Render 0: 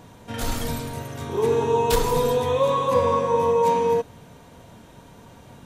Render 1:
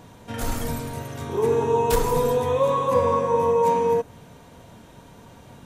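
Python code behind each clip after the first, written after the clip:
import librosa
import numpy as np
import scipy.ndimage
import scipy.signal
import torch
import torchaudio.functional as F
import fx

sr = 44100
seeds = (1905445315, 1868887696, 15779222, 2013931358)

y = fx.dynamic_eq(x, sr, hz=3800.0, q=1.2, threshold_db=-45.0, ratio=4.0, max_db=-6)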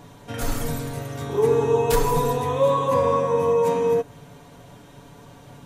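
y = x + 0.54 * np.pad(x, (int(7.0 * sr / 1000.0), 0))[:len(x)]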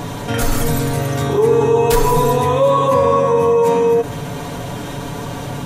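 y = fx.env_flatten(x, sr, amount_pct=50)
y = F.gain(torch.from_numpy(y), 4.5).numpy()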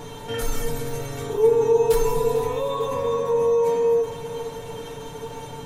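y = fx.comb_fb(x, sr, f0_hz=450.0, decay_s=0.16, harmonics='all', damping=0.0, mix_pct=90)
y = fx.echo_feedback(y, sr, ms=449, feedback_pct=54, wet_db=-14.0)
y = F.gain(torch.from_numpy(y), 2.5).numpy()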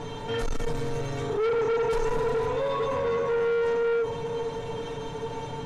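y = 10.0 ** (-24.5 / 20.0) * np.tanh(x / 10.0 ** (-24.5 / 20.0))
y = fx.air_absorb(y, sr, metres=93.0)
y = F.gain(torch.from_numpy(y), 2.0).numpy()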